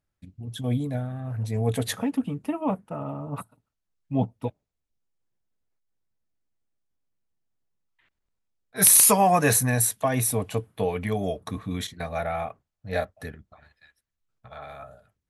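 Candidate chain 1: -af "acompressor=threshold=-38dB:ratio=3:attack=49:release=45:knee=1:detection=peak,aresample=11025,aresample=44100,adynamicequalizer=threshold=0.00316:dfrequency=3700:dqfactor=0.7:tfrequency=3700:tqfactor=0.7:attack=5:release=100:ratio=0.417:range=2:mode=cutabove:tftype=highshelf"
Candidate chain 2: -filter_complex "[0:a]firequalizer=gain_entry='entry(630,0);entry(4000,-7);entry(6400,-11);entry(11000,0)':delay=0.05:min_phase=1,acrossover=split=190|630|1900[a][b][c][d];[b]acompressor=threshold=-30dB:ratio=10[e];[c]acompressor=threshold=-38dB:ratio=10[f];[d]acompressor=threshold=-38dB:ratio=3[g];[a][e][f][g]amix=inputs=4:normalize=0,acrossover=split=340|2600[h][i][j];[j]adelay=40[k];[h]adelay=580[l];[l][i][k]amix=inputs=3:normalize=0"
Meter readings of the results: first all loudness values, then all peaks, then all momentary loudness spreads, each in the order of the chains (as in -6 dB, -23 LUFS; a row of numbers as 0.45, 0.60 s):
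-36.0, -32.5 LUFS; -16.5, -16.5 dBFS; 9, 15 LU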